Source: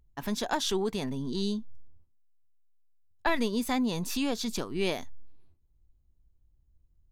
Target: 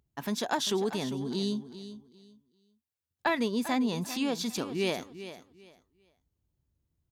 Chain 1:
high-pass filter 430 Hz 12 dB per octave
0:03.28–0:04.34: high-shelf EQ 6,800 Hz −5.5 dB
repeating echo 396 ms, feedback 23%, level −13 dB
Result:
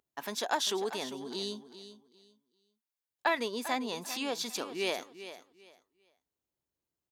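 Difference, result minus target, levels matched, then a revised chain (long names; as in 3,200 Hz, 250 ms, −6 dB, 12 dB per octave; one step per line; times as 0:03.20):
125 Hz band −11.5 dB
high-pass filter 110 Hz 12 dB per octave
0:03.28–0:04.34: high-shelf EQ 6,800 Hz −5.5 dB
repeating echo 396 ms, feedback 23%, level −13 dB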